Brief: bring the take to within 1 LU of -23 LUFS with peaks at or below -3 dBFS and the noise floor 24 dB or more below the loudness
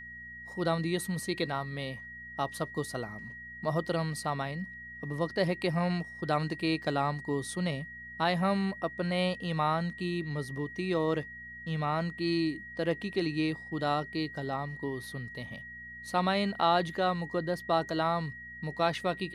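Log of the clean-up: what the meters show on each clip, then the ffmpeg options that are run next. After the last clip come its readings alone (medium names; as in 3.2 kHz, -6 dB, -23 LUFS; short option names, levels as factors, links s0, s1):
hum 60 Hz; highest harmonic 240 Hz; hum level -55 dBFS; steady tone 1.9 kHz; tone level -43 dBFS; loudness -32.0 LUFS; peak level -13.5 dBFS; loudness target -23.0 LUFS
-> -af "bandreject=f=60:t=h:w=4,bandreject=f=120:t=h:w=4,bandreject=f=180:t=h:w=4,bandreject=f=240:t=h:w=4"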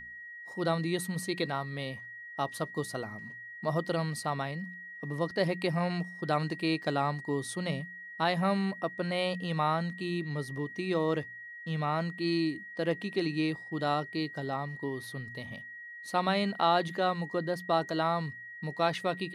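hum not found; steady tone 1.9 kHz; tone level -43 dBFS
-> -af "bandreject=f=1900:w=30"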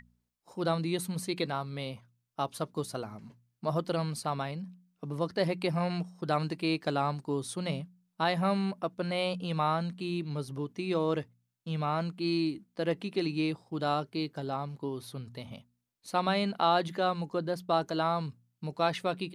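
steady tone not found; loudness -32.5 LUFS; peak level -14.0 dBFS; loudness target -23.0 LUFS
-> -af "volume=2.99"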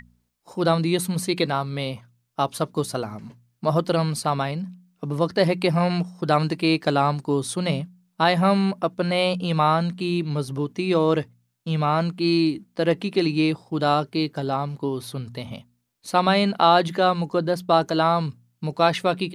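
loudness -23.0 LUFS; peak level -4.5 dBFS; noise floor -71 dBFS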